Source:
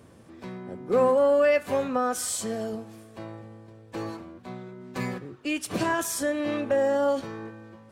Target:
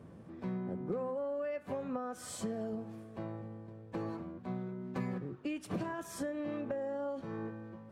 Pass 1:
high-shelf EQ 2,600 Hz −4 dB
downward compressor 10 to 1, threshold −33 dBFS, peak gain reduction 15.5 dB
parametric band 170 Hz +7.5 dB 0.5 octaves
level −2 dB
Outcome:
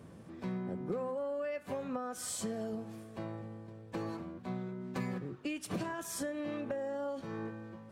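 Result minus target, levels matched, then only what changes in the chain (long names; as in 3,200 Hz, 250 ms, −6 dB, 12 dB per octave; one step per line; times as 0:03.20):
4,000 Hz band +5.0 dB
change: high-shelf EQ 2,600 Hz −14 dB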